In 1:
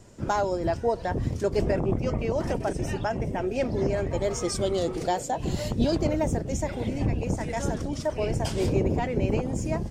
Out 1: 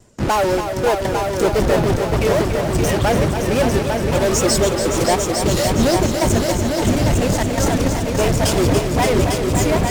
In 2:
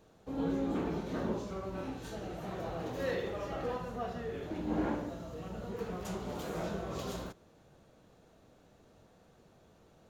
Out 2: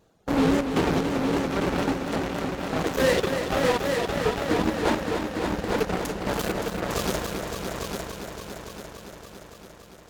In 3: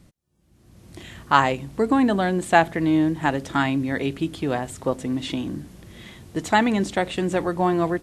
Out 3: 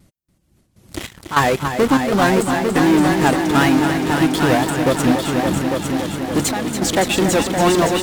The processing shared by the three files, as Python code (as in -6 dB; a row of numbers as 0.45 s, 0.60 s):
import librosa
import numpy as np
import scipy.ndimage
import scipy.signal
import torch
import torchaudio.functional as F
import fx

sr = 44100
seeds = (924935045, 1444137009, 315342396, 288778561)

p1 = fx.dereverb_blind(x, sr, rt60_s=0.88)
p2 = fx.high_shelf(p1, sr, hz=6500.0, db=4.5)
p3 = fx.fuzz(p2, sr, gain_db=41.0, gate_db=-39.0)
p4 = p2 + F.gain(torch.from_numpy(p3), -5.0).numpy()
p5 = fx.step_gate(p4, sr, bpm=99, pattern='xxxx.xx..', floor_db=-12.0, edge_ms=4.5)
p6 = p5 + fx.echo_heads(p5, sr, ms=284, heads='all three', feedback_pct=60, wet_db=-8.5, dry=0)
y = fx.vibrato(p6, sr, rate_hz=3.9, depth_cents=68.0)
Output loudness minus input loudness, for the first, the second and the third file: +10.0 LU, +12.0 LU, +6.0 LU